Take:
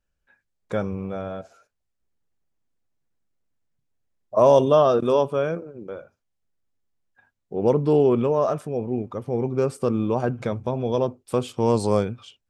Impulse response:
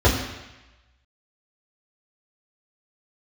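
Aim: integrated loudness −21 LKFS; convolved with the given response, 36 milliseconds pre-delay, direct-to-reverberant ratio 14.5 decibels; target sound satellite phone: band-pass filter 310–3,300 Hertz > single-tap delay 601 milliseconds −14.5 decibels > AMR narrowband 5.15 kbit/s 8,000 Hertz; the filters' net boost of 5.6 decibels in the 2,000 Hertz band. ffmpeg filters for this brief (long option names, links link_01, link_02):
-filter_complex "[0:a]equalizer=frequency=2000:width_type=o:gain=9,asplit=2[link_01][link_02];[1:a]atrim=start_sample=2205,adelay=36[link_03];[link_02][link_03]afir=irnorm=-1:irlink=0,volume=-35dB[link_04];[link_01][link_04]amix=inputs=2:normalize=0,highpass=310,lowpass=3300,aecho=1:1:601:0.188,volume=2.5dB" -ar 8000 -c:a libopencore_amrnb -b:a 5150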